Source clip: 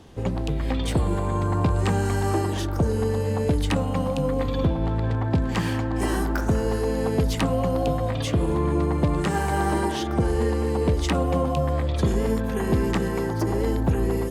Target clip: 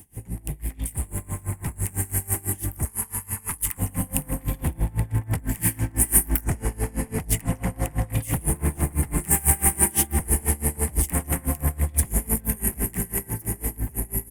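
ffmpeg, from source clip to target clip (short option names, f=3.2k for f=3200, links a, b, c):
-filter_complex "[0:a]aeval=exprs='0.237*sin(PI/2*2.24*val(0)/0.237)':c=same,asettb=1/sr,asplit=3[a][b][c];[a]atrim=end=2.854[d];[b]atrim=start=2.85:end=3.78,asetpts=PTS-STARTPTS,afade=t=in:d=0.004:c=qsin,afade=t=out:st=0.926:d=0.004:c=qsin,lowshelf=f=790:t=q:w=3:g=-9[e];[c]atrim=start=3.776[f];[d][e]acrossfade=d=0.004:c1=hsin:c2=qsin[g];[g][f]acrossfade=d=0.004:c1=qsin:c2=hsin,dynaudnorm=f=870:g=7:m=7.5dB,aecho=1:1:508|1016|1524|2032:0.178|0.08|0.036|0.0162,asettb=1/sr,asplit=3[h][i][j];[h]atrim=end=6.444[k];[i]atrim=start=6.44:end=8.1,asetpts=PTS-STARTPTS,afade=t=in:d=0.004:c=qsin,afade=t=out:st=1.656:d=0.004:c=qsin,adynamicsmooth=sensitivity=0.5:basefreq=5.6k[l];[j]atrim=start=8.096[m];[k][l]acrossfade=d=0.004:c1=hsin:c2=qsin[n];[n][m]acrossfade=d=0.004:c1=qsin:c2=hsin,firequalizer=gain_entry='entry(100,0);entry(540,-14);entry(810,-7);entry(1300,-13);entry(2000,1);entry(3700,-11);entry(6300,-18);entry(9400,-1)':delay=0.05:min_phase=1,asplit=2[o][p];[p]adelay=160,highpass=300,lowpass=3.4k,asoftclip=type=hard:threshold=-16dB,volume=-12dB[q];[o][q]amix=inputs=2:normalize=0,aexciter=amount=13.2:drive=5:freq=5.9k,aeval=exprs='val(0)*pow(10,-25*(0.5-0.5*cos(2*PI*6*n/s))/20)':c=same,volume=-7.5dB"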